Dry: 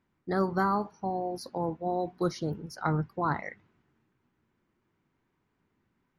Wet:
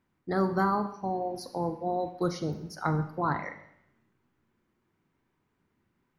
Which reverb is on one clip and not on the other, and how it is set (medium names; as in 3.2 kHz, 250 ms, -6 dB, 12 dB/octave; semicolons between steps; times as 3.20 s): Schroeder reverb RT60 0.76 s, combs from 31 ms, DRR 9.5 dB